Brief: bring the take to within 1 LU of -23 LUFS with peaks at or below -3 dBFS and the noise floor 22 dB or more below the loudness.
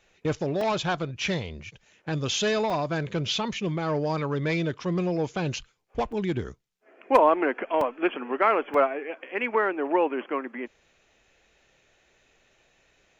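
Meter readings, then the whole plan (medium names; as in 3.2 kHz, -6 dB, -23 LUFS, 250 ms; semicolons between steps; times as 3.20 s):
dropouts 5; longest dropout 3.1 ms; loudness -26.5 LUFS; peak level -8.0 dBFS; loudness target -23.0 LUFS
-> interpolate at 0.61/2.70/6.12/7.81/8.74 s, 3.1 ms; trim +3.5 dB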